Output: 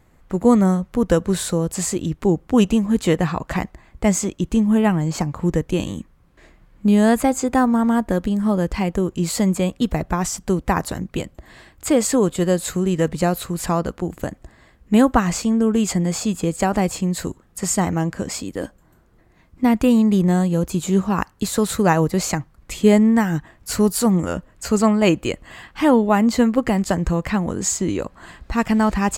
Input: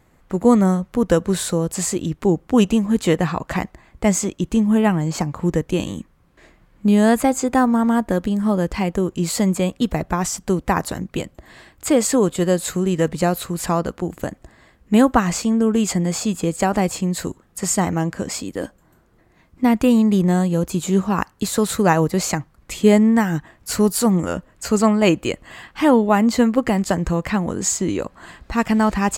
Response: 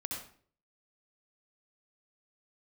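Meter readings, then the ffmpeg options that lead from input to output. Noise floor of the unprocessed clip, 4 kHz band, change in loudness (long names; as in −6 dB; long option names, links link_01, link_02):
−56 dBFS, −1.0 dB, −0.5 dB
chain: -af "lowshelf=frequency=89:gain=6,volume=-1dB"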